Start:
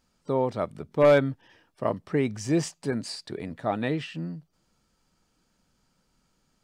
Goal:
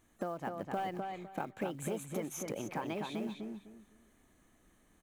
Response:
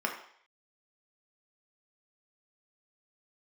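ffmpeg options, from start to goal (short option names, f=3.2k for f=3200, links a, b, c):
-filter_complex "[0:a]equalizer=f=3.8k:t=o:w=0.42:g=-14,acompressor=threshold=-37dB:ratio=10,asetrate=58212,aresample=44100,acrusher=bits=7:mode=log:mix=0:aa=0.000001,asplit=2[a][b];[b]adelay=253,lowpass=f=4k:p=1,volume=-4dB,asplit=2[c][d];[d]adelay=253,lowpass=f=4k:p=1,volume=0.25,asplit=2[e][f];[f]adelay=253,lowpass=f=4k:p=1,volume=0.25[g];[c][e][g]amix=inputs=3:normalize=0[h];[a][h]amix=inputs=2:normalize=0,volume=2dB"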